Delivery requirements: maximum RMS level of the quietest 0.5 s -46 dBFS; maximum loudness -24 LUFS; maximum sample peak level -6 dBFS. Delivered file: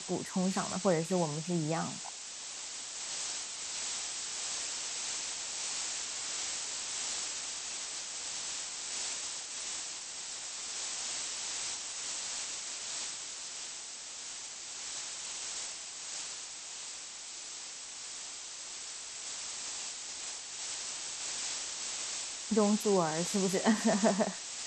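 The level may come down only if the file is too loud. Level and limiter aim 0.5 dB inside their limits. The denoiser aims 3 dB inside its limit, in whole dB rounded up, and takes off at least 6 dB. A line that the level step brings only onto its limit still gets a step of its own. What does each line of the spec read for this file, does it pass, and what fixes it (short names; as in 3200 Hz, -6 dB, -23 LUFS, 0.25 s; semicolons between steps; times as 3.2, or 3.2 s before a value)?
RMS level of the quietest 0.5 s -45 dBFS: fail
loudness -35.0 LUFS: OK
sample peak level -14.5 dBFS: OK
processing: denoiser 6 dB, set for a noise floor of -45 dBFS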